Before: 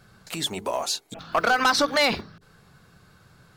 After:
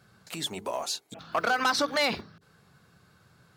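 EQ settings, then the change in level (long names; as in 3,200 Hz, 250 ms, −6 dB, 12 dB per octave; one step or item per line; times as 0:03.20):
high-pass filter 72 Hz
−5.0 dB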